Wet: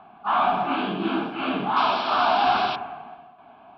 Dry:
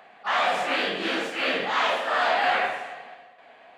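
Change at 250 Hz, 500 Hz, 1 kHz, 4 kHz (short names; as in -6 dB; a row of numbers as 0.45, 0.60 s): +7.5, -0.5, +4.0, -1.5 dB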